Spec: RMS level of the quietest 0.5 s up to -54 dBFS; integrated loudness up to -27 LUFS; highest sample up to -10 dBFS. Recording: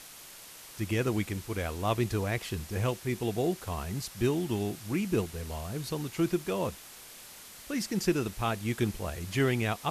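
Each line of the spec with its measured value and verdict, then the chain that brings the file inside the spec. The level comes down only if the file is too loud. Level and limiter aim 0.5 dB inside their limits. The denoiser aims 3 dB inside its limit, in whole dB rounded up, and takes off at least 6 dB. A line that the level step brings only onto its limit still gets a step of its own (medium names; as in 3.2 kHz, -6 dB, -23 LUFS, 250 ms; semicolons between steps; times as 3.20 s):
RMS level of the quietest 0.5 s -49 dBFS: fail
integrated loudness -32.0 LUFS: pass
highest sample -14.5 dBFS: pass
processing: noise reduction 8 dB, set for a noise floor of -49 dBFS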